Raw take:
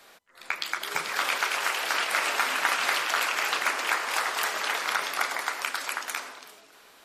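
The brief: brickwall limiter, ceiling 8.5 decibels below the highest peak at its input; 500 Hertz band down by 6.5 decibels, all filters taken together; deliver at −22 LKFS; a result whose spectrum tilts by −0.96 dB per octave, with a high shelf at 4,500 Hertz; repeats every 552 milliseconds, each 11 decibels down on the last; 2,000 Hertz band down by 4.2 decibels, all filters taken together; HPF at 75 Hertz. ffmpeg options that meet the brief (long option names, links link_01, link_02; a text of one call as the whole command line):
ffmpeg -i in.wav -af "highpass=75,equalizer=frequency=500:width_type=o:gain=-8.5,equalizer=frequency=2000:width_type=o:gain=-3.5,highshelf=frequency=4500:gain=-7,alimiter=limit=-19.5dB:level=0:latency=1,aecho=1:1:552|1104|1656:0.282|0.0789|0.0221,volume=10dB" out.wav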